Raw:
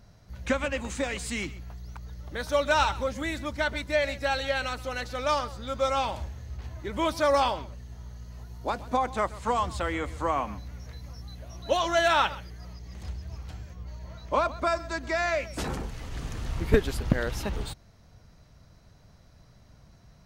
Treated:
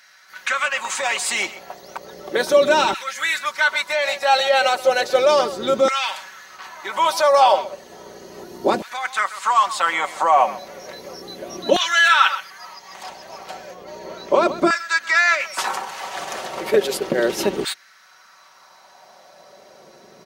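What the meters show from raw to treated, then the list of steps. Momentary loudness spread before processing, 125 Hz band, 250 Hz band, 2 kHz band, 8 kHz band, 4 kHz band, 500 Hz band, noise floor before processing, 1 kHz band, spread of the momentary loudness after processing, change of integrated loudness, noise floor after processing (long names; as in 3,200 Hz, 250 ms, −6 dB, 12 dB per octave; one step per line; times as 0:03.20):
19 LU, can't be measured, +5.0 dB, +12.0 dB, +12.0 dB, +11.0 dB, +9.0 dB, −56 dBFS, +9.5 dB, 21 LU, +9.5 dB, −50 dBFS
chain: sub-octave generator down 1 octave, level −1 dB
dynamic equaliser 1,300 Hz, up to −4 dB, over −40 dBFS, Q 0.81
comb filter 5.3 ms, depth 52%
in parallel at +1.5 dB: compressor whose output falls as the input rises −30 dBFS, ratio −1
on the sum: auto-filter high-pass saw down 0.34 Hz 300–1,800 Hz
level +4 dB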